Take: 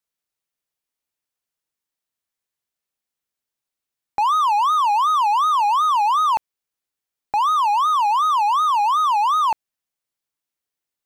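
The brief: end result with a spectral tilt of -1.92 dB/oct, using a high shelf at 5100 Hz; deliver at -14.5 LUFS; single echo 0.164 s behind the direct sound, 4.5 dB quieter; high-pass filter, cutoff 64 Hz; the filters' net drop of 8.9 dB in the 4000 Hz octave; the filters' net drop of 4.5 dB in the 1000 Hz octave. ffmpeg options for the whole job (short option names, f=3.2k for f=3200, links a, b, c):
-af "highpass=64,equalizer=f=1k:t=o:g=-4.5,equalizer=f=4k:t=o:g=-8.5,highshelf=f=5.1k:g=-7.5,aecho=1:1:164:0.596,volume=6.5dB"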